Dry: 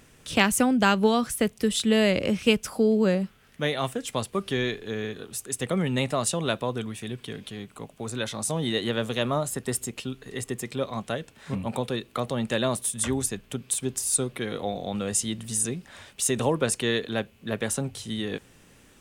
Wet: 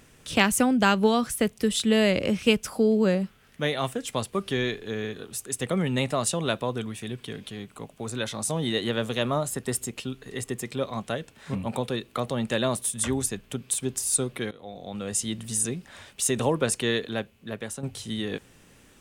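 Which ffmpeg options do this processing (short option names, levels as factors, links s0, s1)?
-filter_complex "[0:a]asplit=3[s0][s1][s2];[s0]atrim=end=14.51,asetpts=PTS-STARTPTS,afade=t=out:st=14.506:d=0.004:c=hsin:silence=0.1[s3];[s1]atrim=start=14.51:end=17.83,asetpts=PTS-STARTPTS,afade=t=in:d=0.84:silence=0.1,afade=t=out:st=2.4:d=0.92:silence=0.334965[s4];[s2]atrim=start=17.83,asetpts=PTS-STARTPTS,afade=t=in:d=0.004:c=hsin:silence=0.334965[s5];[s3][s4][s5]concat=n=3:v=0:a=1"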